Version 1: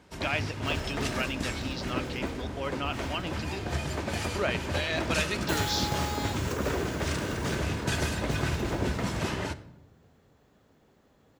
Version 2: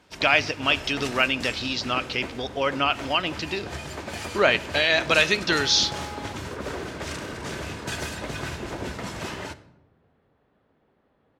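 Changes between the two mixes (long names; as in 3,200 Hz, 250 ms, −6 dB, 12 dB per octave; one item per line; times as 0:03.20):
speech +11.5 dB
second sound: add high-frequency loss of the air 340 metres
master: add low-shelf EQ 280 Hz −7 dB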